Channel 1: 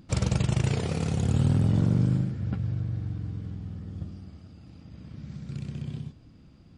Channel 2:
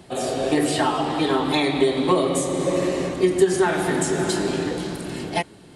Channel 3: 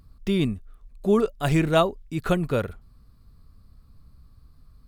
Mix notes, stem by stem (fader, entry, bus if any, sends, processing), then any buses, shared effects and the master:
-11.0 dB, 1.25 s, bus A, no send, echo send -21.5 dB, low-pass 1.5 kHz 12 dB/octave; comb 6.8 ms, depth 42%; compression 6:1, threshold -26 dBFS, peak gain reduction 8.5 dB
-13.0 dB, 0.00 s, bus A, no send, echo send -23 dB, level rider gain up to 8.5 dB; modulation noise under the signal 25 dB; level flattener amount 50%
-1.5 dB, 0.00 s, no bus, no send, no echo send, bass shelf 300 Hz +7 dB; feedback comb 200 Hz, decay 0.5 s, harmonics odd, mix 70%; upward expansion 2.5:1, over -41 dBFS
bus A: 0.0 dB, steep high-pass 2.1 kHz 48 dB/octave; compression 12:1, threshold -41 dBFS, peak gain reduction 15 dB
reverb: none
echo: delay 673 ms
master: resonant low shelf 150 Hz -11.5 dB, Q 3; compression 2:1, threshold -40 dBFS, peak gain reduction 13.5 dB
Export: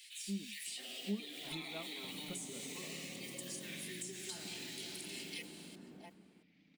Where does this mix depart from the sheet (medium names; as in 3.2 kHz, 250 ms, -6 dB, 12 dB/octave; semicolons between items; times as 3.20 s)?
stem 1 -11.0 dB -> 0.0 dB; stem 2 -13.0 dB -> -20.0 dB; stem 3 -1.5 dB -> -12.0 dB